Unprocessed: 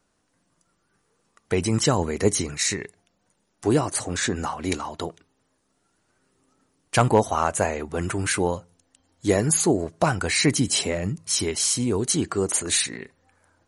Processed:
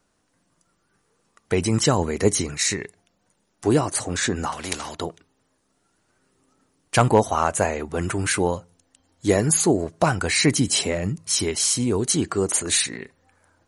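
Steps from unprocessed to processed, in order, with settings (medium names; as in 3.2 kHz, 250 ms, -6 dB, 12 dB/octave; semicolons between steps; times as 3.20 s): 4.52–4.95 s: spectrum-flattening compressor 2:1; trim +1.5 dB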